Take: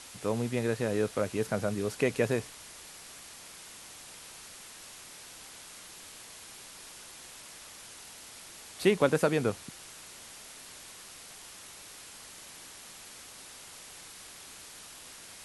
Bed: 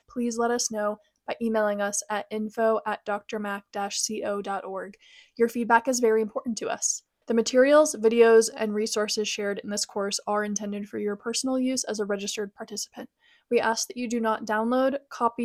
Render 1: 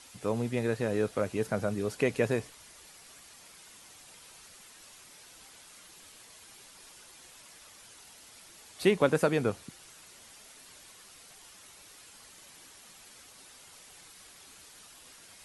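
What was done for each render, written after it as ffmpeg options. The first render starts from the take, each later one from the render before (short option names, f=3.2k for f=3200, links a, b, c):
-af "afftdn=nr=7:nf=-49"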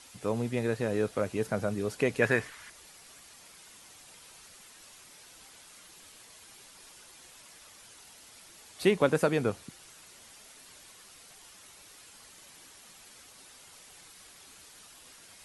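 -filter_complex "[0:a]asettb=1/sr,asplit=3[a][b][c];[a]atrim=end=2.224[d];[b]atrim=start=2.22:end=2.7,asetpts=PTS-STARTPTS,afade=t=in:d=0.004:c=qsin,afade=t=out:st=0.476:d=0.004:c=qsin,equalizer=f=1.7k:w=1.2:g=13.5[e];[c]atrim=start=2.696[f];[d][e]acrossfade=d=0.004:c1=hsin:c2=qsin[g];[g][f]acrossfade=d=0.004:c1=qsin:c2=hsin"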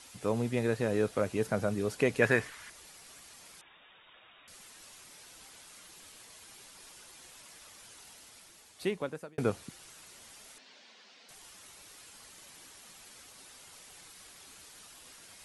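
-filter_complex "[0:a]asettb=1/sr,asplit=3[a][b][c];[a]atrim=end=3.614[d];[b]atrim=start=3.61:end=4.48,asetpts=PTS-STARTPTS,afade=t=in:d=0.004:c=qsin,afade=t=out:st=0.866:d=0.004:c=qsin,lowpass=f=3.2k:t=q:w=0.5098,lowpass=f=3.2k:t=q:w=0.6013,lowpass=f=3.2k:t=q:w=0.9,lowpass=f=3.2k:t=q:w=2.563,afreqshift=-3800[e];[c]atrim=start=4.476[f];[d][e]acrossfade=d=0.004:c1=hsin:c2=qsin[g];[g][f]acrossfade=d=0.004:c1=qsin:c2=hsin,asettb=1/sr,asplit=3[h][i][j];[h]atrim=end=10.584[k];[i]atrim=start=10.58:end=11.29,asetpts=PTS-STARTPTS,afade=t=in:d=0.004:c=qsin,afade=t=out:st=0.706:d=0.004:c=qsin,highpass=f=220:w=0.5412,highpass=f=220:w=1.3066,equalizer=f=230:t=q:w=4:g=5,equalizer=f=330:t=q:w=4:g=-8,equalizer=f=1.2k:t=q:w=4:g=-6,lowpass=f=5.1k:w=0.5412,lowpass=f=5.1k:w=1.3066[l];[j]atrim=start=11.286[m];[k][l]acrossfade=d=0.004:c1=hsin:c2=qsin[n];[n][m]acrossfade=d=0.004:c1=qsin:c2=hsin,asplit=2[o][p];[o]atrim=end=9.38,asetpts=PTS-STARTPTS,afade=t=out:st=8.12:d=1.26[q];[p]atrim=start=9.38,asetpts=PTS-STARTPTS,afade=t=in:d=0.004:c=hsin[r];[q][r]concat=n=2:v=0:a=1"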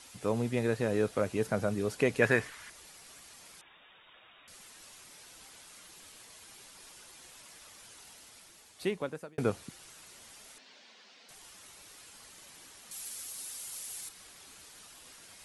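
-filter_complex "[0:a]asettb=1/sr,asplit=3[a][b][c];[a]atrim=end=12.914[d];[b]atrim=start=12.91:end=14.09,asetpts=PTS-STARTPTS,afade=t=in:d=0.004:c=qsin,afade=t=out:st=1.176:d=0.004:c=qsin,aemphasis=mode=production:type=75fm[e];[c]atrim=start=14.086[f];[d][e]acrossfade=d=0.004:c1=hsin:c2=qsin[g];[g][f]acrossfade=d=0.004:c1=qsin:c2=hsin"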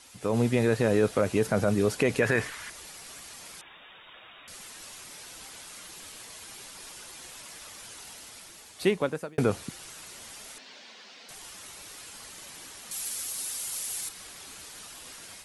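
-af "alimiter=limit=-21dB:level=0:latency=1:release=33,dynaudnorm=f=190:g=3:m=8dB"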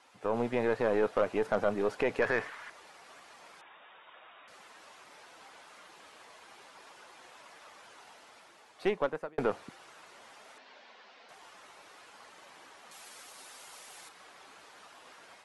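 -af "bandpass=f=870:t=q:w=0.85:csg=0,aeval=exprs='0.188*(cos(1*acos(clip(val(0)/0.188,-1,1)))-cos(1*PI/2))+0.0106*(cos(6*acos(clip(val(0)/0.188,-1,1)))-cos(6*PI/2))':c=same"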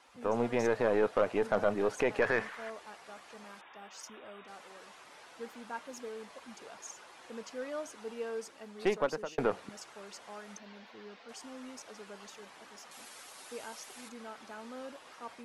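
-filter_complex "[1:a]volume=-21.5dB[a];[0:a][a]amix=inputs=2:normalize=0"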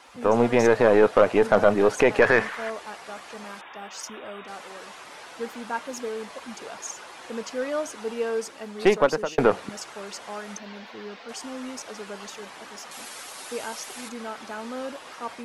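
-af "volume=11dB"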